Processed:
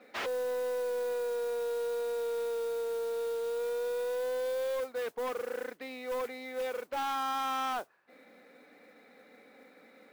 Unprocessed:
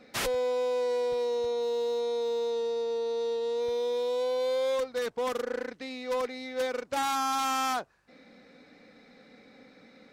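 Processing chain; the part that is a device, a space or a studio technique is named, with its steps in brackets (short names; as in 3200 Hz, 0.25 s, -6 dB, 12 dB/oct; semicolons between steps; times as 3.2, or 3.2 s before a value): carbon microphone (BPF 330–2800 Hz; soft clip -29.5 dBFS, distortion -15 dB; modulation noise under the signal 20 dB)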